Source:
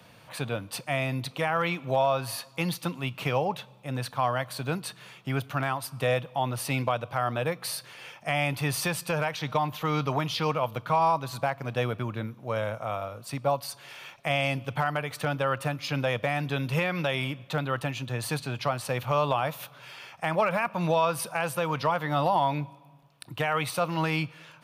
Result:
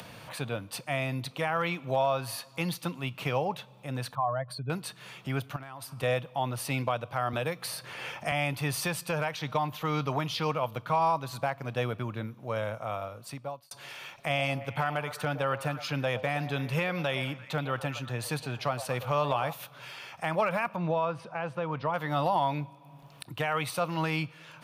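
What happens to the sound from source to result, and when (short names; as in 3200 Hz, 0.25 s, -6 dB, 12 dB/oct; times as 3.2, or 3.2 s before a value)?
4.15–4.7 spectral contrast raised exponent 2
5.56–6.03 compressor 10:1, threshold -36 dBFS
7.33–8.32 three-band squash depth 70%
13.06–13.71 fade out
14.26–19.53 delay with a stepping band-pass 0.115 s, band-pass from 660 Hz, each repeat 0.7 oct, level -9 dB
20.76–21.94 tape spacing loss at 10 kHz 28 dB
whole clip: upward compressor, threshold -35 dBFS; gain -2.5 dB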